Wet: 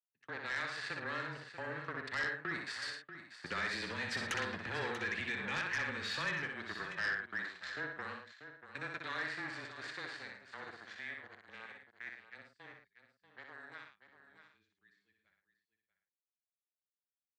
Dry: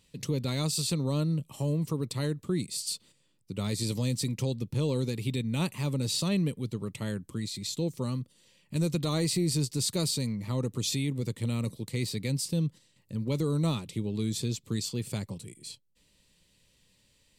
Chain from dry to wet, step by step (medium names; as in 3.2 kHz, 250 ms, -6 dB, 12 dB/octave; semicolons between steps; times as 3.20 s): Doppler pass-by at 4.39 s, 6 m/s, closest 1.3 m; expander -58 dBFS; waveshaping leveller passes 3; compression 6:1, threshold -37 dBFS, peak gain reduction 13.5 dB; frequency shift -21 Hz; band-pass filter 1.7 kHz, Q 8; distance through air 98 m; loudspeakers at several distances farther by 21 m -5 dB, 38 m -10 dB; sine folder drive 11 dB, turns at -44.5 dBFS; delay 638 ms -11.5 dB; trim +14.5 dB